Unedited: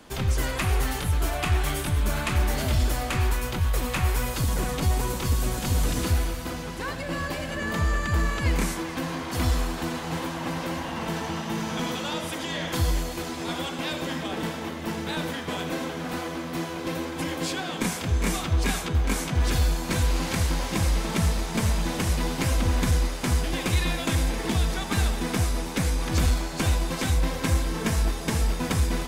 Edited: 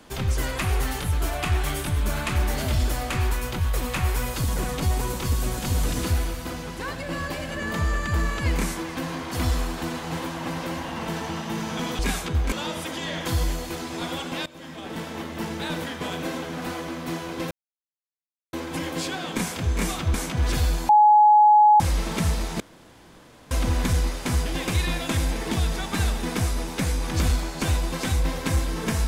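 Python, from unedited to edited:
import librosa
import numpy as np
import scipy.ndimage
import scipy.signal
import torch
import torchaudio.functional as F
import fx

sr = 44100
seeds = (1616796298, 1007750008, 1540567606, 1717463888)

y = fx.edit(x, sr, fx.fade_in_from(start_s=13.93, length_s=0.77, floor_db=-20.0),
    fx.insert_silence(at_s=16.98, length_s=1.02),
    fx.move(start_s=18.59, length_s=0.53, to_s=11.99),
    fx.bleep(start_s=19.87, length_s=0.91, hz=843.0, db=-11.0),
    fx.room_tone_fill(start_s=21.58, length_s=0.91), tone=tone)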